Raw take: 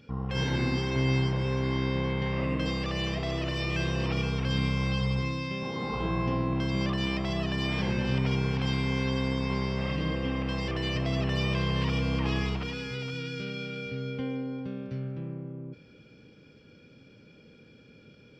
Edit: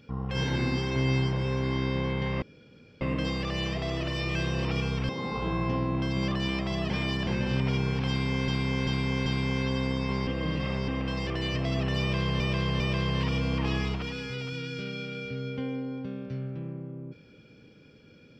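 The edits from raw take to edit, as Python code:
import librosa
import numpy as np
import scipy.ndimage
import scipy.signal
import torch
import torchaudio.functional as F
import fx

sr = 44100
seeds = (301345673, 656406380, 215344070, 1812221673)

y = fx.edit(x, sr, fx.insert_room_tone(at_s=2.42, length_s=0.59),
    fx.cut(start_s=4.5, length_s=1.17),
    fx.reverse_span(start_s=7.48, length_s=0.37),
    fx.repeat(start_s=8.67, length_s=0.39, count=4),
    fx.reverse_span(start_s=9.68, length_s=0.61),
    fx.repeat(start_s=11.41, length_s=0.4, count=3), tone=tone)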